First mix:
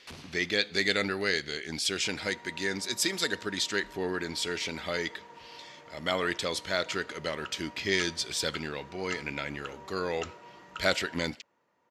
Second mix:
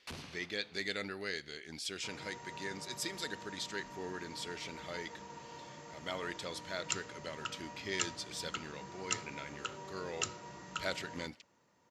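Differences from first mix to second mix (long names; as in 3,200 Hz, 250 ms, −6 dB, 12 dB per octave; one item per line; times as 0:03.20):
speech −11.0 dB
second sound: add bass and treble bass +9 dB, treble +13 dB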